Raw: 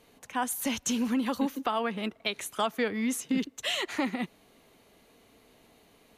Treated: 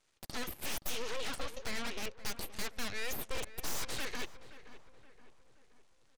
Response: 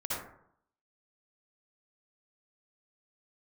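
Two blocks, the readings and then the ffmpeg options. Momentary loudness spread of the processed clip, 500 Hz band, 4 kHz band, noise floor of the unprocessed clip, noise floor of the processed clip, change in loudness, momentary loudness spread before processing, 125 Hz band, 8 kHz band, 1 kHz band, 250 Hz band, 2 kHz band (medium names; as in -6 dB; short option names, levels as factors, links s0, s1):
8 LU, -9.5 dB, -6.0 dB, -62 dBFS, -67 dBFS, -9.0 dB, 5 LU, -4.5 dB, -6.0 dB, -12.0 dB, -19.0 dB, -5.5 dB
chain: -filter_complex "[0:a]highshelf=f=2700:g=3.5,afftfilt=real='re*between(b*sr/4096,110,6800)':imag='im*between(b*sr/4096,110,6800)':win_size=4096:overlap=0.75,equalizer=f=430:w=0.58:g=-14.5,asplit=2[s0][s1];[s1]acompressor=threshold=0.00316:ratio=6,volume=0.944[s2];[s0][s2]amix=inputs=2:normalize=0,aeval=exprs='0.2*(cos(1*acos(clip(val(0)/0.2,-1,1)))-cos(1*PI/2))+0.00398*(cos(5*acos(clip(val(0)/0.2,-1,1)))-cos(5*PI/2))+0.0316*(cos(7*acos(clip(val(0)/0.2,-1,1)))-cos(7*PI/2))+0.0794*(cos(8*acos(clip(val(0)/0.2,-1,1)))-cos(8*PI/2))':c=same,asoftclip=type=tanh:threshold=0.02,asplit=2[s3][s4];[s4]adelay=523,lowpass=f=2300:p=1,volume=0.2,asplit=2[s5][s6];[s6]adelay=523,lowpass=f=2300:p=1,volume=0.51,asplit=2[s7][s8];[s8]adelay=523,lowpass=f=2300:p=1,volume=0.51,asplit=2[s9][s10];[s10]adelay=523,lowpass=f=2300:p=1,volume=0.51,asplit=2[s11][s12];[s12]adelay=523,lowpass=f=2300:p=1,volume=0.51[s13];[s3][s5][s7][s9][s11][s13]amix=inputs=6:normalize=0,volume=1.5"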